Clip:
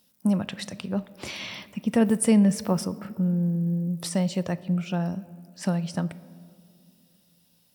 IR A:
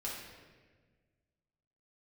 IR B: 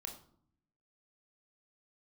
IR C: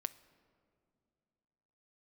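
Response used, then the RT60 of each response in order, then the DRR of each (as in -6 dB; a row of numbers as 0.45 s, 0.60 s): C; 1.5 s, 0.60 s, 2.5 s; -6.0 dB, 2.5 dB, 13.0 dB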